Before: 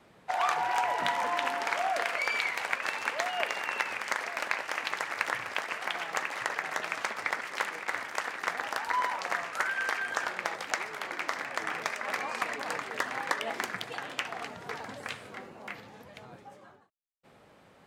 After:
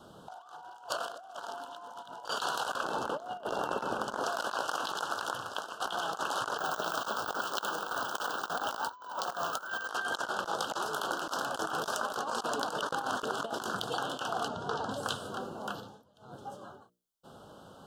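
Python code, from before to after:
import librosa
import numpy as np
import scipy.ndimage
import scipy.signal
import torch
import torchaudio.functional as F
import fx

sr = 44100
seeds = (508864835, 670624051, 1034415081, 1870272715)

y = fx.tilt_shelf(x, sr, db=9.0, hz=830.0, at=(2.83, 4.24))
y = fx.resample_bad(y, sr, factor=2, down='filtered', up='hold', at=(6.58, 9.87))
y = fx.high_shelf(y, sr, hz=10000.0, db=6.5, at=(10.82, 12.16))
y = fx.air_absorb(y, sr, metres=73.0, at=(14.48, 14.91))
y = fx.edit(y, sr, fx.reverse_span(start_s=0.89, length_s=1.36),
    fx.fade_out_to(start_s=4.79, length_s=1.01, floor_db=-12.5),
    fx.reverse_span(start_s=12.78, length_s=0.66),
    fx.fade_down_up(start_s=15.74, length_s=0.72, db=-21.5, fade_s=0.28), tone=tone)
y = scipy.signal.sosfilt(scipy.signal.ellip(3, 1.0, 60, [1500.0, 3000.0], 'bandstop', fs=sr, output='sos'), y)
y = fx.hum_notches(y, sr, base_hz=60, count=10)
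y = fx.over_compress(y, sr, threshold_db=-39.0, ratio=-0.5)
y = y * 10.0 ** (4.0 / 20.0)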